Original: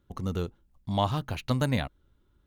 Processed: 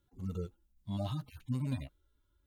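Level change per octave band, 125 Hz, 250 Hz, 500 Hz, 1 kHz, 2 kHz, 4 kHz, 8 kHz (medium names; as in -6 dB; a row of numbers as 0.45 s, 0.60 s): -7.0 dB, -7.5 dB, -13.0 dB, -18.5 dB, -19.0 dB, -15.0 dB, under -10 dB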